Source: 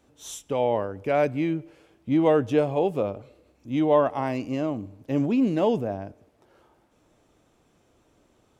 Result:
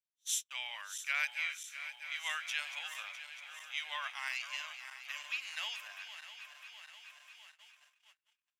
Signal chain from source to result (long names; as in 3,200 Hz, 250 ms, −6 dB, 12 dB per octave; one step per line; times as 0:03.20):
feedback delay that plays each chunk backwards 327 ms, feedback 80%, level −11 dB
noise gate −39 dBFS, range −35 dB
inverse Chebyshev high-pass filter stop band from 400 Hz, stop band 70 dB
level +4.5 dB